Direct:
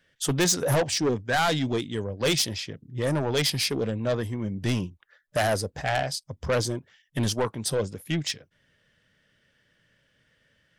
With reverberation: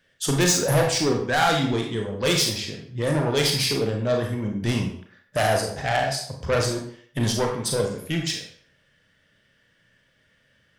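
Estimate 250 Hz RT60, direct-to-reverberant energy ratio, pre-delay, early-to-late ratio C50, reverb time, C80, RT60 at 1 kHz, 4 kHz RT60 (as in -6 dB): 0.50 s, 1.0 dB, 29 ms, 4.5 dB, 0.60 s, 8.5 dB, 0.60 s, 0.50 s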